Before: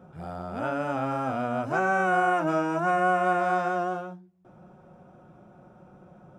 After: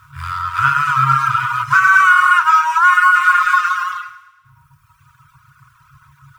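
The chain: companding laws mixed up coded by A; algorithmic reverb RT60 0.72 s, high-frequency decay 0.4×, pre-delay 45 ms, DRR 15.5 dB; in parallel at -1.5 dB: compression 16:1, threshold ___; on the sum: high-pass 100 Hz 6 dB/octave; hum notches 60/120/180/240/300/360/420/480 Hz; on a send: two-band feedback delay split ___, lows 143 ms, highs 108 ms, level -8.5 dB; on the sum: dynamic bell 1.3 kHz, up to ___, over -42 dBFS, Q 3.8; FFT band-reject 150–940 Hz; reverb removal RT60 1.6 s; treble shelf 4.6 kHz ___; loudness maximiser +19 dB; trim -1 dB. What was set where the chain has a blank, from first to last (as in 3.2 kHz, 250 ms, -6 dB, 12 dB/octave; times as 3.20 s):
-34 dBFS, 690 Hz, +5 dB, -2.5 dB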